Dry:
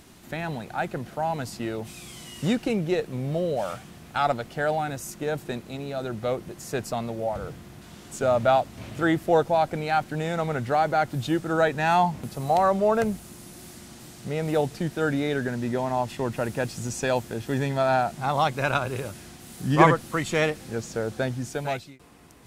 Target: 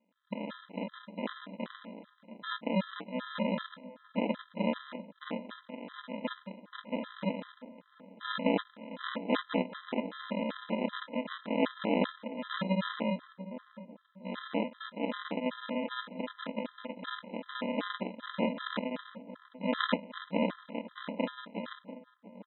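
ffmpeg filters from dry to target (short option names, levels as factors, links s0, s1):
-filter_complex "[0:a]aeval=exprs='if(lt(val(0),0),0.708*val(0),val(0))':c=same,aresample=11025,acrusher=samples=29:mix=1:aa=0.000001,aresample=44100,agate=range=0.224:threshold=0.00708:ratio=16:detection=peak,afftfilt=real='re*between(b*sr/4096,180,4000)':imag='im*between(b*sr/4096,180,4000)':win_size=4096:overlap=0.75,adynamicequalizer=threshold=0.00794:dfrequency=520:dqfactor=2.5:tfrequency=520:tqfactor=2.5:attack=5:release=100:ratio=0.375:range=1.5:mode=boostabove:tftype=bell,asplit=2[s0][s1];[s1]adelay=692,lowpass=f=990:p=1,volume=0.211,asplit=2[s2][s3];[s3]adelay=692,lowpass=f=990:p=1,volume=0.35,asplit=2[s4][s5];[s5]adelay=692,lowpass=f=990:p=1,volume=0.35[s6];[s0][s2][s4][s6]amix=inputs=4:normalize=0,afftfilt=real='re*gt(sin(2*PI*2.6*pts/sr)*(1-2*mod(floor(b*sr/1024/1000),2)),0)':imag='im*gt(sin(2*PI*2.6*pts/sr)*(1-2*mod(floor(b*sr/1024/1000),2)),0)':win_size=1024:overlap=0.75"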